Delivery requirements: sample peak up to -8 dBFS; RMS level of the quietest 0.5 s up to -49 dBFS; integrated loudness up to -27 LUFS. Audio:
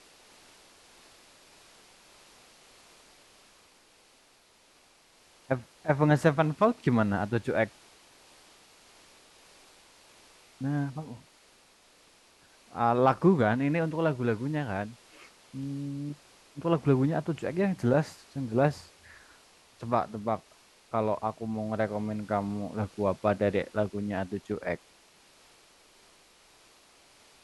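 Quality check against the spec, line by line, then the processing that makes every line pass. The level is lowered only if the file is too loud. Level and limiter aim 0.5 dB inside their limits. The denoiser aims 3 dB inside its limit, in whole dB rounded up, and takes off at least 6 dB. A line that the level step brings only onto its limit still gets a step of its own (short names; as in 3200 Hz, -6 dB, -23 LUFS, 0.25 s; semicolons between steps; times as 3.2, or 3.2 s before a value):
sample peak -9.5 dBFS: OK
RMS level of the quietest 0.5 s -62 dBFS: OK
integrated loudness -29.0 LUFS: OK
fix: none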